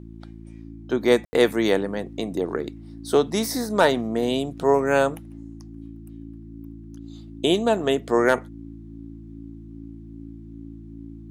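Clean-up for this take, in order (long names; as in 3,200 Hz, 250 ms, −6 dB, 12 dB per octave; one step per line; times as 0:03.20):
clipped peaks rebuilt −6 dBFS
hum removal 55.5 Hz, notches 6
notch filter 280 Hz, Q 30
ambience match 0:01.25–0:01.33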